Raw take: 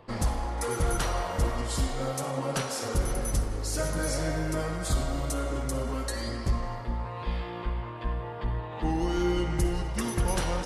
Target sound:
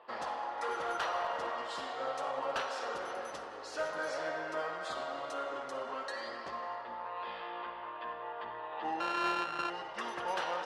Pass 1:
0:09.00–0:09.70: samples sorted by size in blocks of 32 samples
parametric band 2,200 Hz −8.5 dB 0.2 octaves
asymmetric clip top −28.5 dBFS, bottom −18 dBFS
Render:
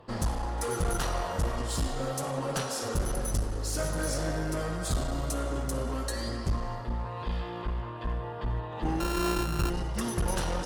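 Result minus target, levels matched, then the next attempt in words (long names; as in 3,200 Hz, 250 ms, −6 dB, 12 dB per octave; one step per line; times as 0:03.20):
1,000 Hz band −6.5 dB
0:09.00–0:09.70: samples sorted by size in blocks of 32 samples
flat-topped band-pass 1,400 Hz, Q 0.54
parametric band 2,200 Hz −8.5 dB 0.2 octaves
asymmetric clip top −28.5 dBFS, bottom −18 dBFS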